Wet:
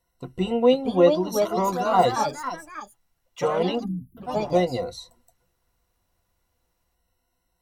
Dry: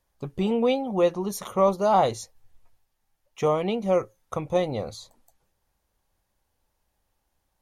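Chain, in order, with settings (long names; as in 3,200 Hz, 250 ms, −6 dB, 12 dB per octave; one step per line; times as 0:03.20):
time-frequency box erased 0:03.84–0:04.39, 290–10,000 Hz
EQ curve with evenly spaced ripples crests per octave 2, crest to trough 17 dB
delay with pitch and tempo change per echo 533 ms, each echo +3 semitones, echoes 3, each echo −6 dB
level −2 dB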